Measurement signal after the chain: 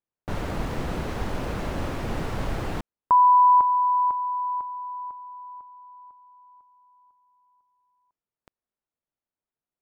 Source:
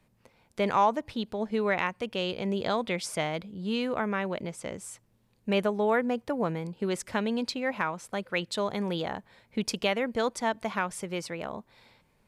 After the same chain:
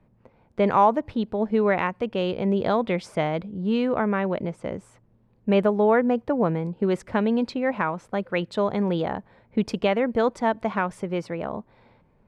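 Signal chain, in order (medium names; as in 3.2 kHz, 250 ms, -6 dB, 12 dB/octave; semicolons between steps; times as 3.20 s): low-pass 1.1 kHz 6 dB/octave; tape noise reduction on one side only decoder only; trim +7.5 dB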